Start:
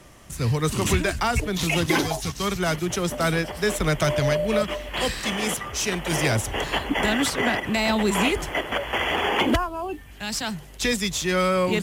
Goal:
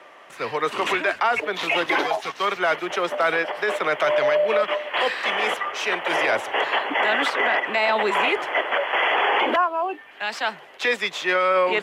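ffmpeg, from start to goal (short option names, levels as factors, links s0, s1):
-filter_complex "[0:a]highpass=310,acrossover=split=430 3100:gain=0.141 1 0.0631[s0][s1][s2];[s0][s1][s2]amix=inputs=3:normalize=0,alimiter=limit=0.1:level=0:latency=1:release=11,volume=2.51"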